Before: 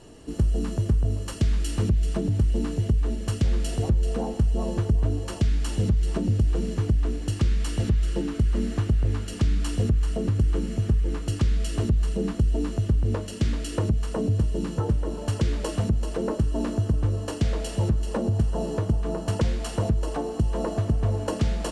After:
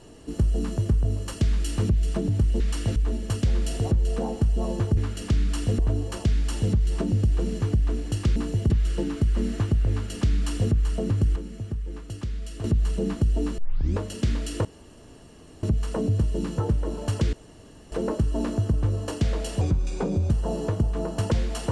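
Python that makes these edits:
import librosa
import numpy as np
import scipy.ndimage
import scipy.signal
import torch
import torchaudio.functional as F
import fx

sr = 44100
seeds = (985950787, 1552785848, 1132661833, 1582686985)

y = fx.edit(x, sr, fx.swap(start_s=2.6, length_s=0.34, other_s=7.52, other_length_s=0.36),
    fx.duplicate(start_s=9.08, length_s=0.82, to_s=4.95),
    fx.clip_gain(start_s=10.54, length_s=1.28, db=-8.5),
    fx.tape_start(start_s=12.76, length_s=0.41),
    fx.insert_room_tone(at_s=13.83, length_s=0.98),
    fx.room_tone_fill(start_s=15.53, length_s=0.59),
    fx.speed_span(start_s=17.81, length_s=0.59, speed=0.85), tone=tone)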